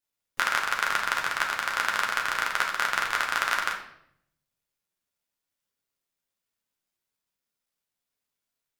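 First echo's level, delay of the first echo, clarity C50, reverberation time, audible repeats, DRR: no echo, no echo, 6.5 dB, 0.70 s, no echo, -0.5 dB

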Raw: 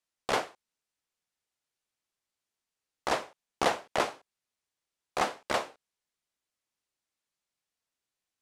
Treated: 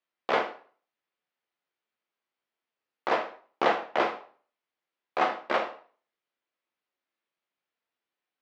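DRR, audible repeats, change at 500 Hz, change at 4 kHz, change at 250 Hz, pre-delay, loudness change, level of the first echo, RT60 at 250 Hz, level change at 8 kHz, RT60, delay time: 3.0 dB, no echo, +3.5 dB, -1.5 dB, +3.0 dB, 9 ms, +3.0 dB, no echo, 0.40 s, under -10 dB, 0.45 s, no echo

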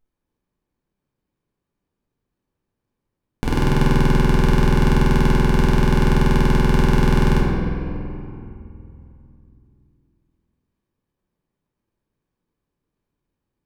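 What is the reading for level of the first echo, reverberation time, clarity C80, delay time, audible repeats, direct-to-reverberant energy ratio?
no echo, 2.8 s, 0.5 dB, no echo, no echo, -6.0 dB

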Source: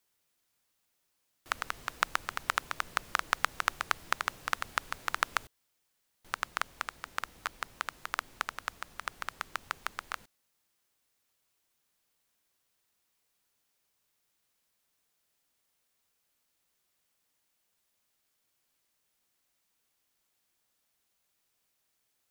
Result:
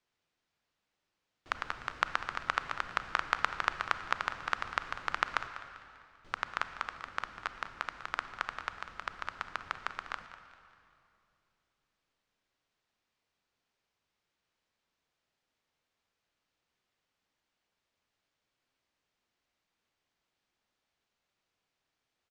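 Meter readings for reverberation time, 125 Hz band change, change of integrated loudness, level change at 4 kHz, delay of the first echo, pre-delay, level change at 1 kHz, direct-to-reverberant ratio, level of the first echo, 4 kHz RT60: 2.6 s, +1.0 dB, -1.0 dB, -3.0 dB, 197 ms, 29 ms, 0.0 dB, 8.5 dB, -14.5 dB, 2.1 s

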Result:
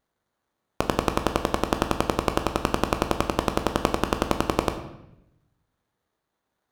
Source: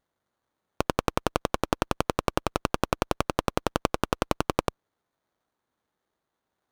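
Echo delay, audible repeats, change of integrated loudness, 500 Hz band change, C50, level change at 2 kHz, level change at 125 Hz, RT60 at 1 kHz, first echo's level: no echo, no echo, +3.0 dB, +2.5 dB, 9.5 dB, +2.0 dB, +2.5 dB, 0.75 s, no echo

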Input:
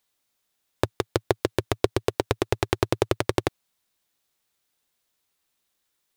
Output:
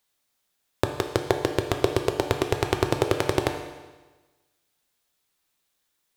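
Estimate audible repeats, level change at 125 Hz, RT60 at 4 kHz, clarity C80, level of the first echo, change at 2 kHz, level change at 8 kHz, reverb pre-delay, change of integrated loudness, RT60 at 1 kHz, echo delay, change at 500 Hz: no echo, +0.5 dB, 1.2 s, 9.0 dB, no echo, +1.5 dB, +1.0 dB, 7 ms, +1.0 dB, 1.3 s, no echo, +1.0 dB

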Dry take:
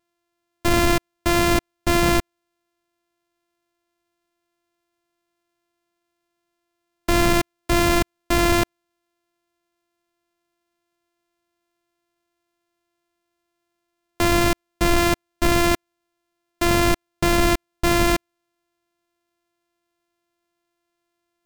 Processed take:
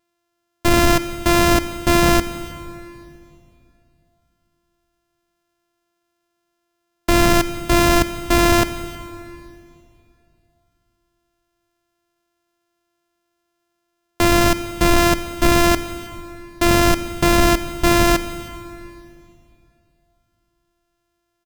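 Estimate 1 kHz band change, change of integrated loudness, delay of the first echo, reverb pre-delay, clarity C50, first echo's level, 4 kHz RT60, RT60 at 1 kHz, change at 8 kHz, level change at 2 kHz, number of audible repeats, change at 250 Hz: +4.0 dB, +3.5 dB, 317 ms, 13 ms, 12.5 dB, -22.5 dB, 2.4 s, 2.6 s, +4.0 dB, +3.0 dB, 1, +4.0 dB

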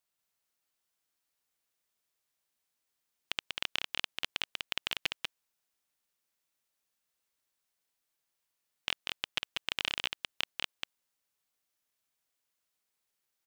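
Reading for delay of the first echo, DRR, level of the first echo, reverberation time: 191 ms, no reverb, -3.5 dB, no reverb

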